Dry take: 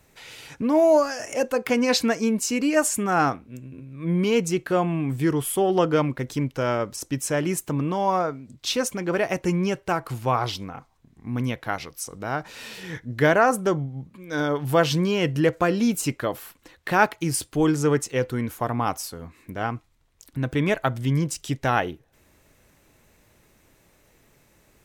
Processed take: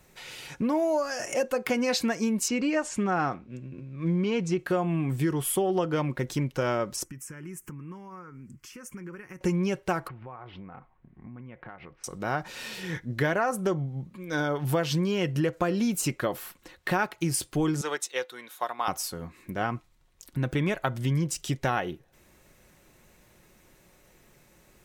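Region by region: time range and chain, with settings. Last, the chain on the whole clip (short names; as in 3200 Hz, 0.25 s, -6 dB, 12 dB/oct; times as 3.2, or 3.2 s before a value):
2.48–4.59 block floating point 7-bit + air absorption 110 m
7.04–9.41 compressor 8:1, threshold -36 dBFS + fixed phaser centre 1600 Hz, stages 4
10.08–12.04 LPF 2300 Hz 24 dB/oct + compressor 8:1, threshold -40 dBFS
17.81–18.88 HPF 670 Hz + bell 3700 Hz +14.5 dB 0.21 oct + upward expander, over -38 dBFS
whole clip: comb 5.5 ms, depth 31%; compressor 5:1, threshold -23 dBFS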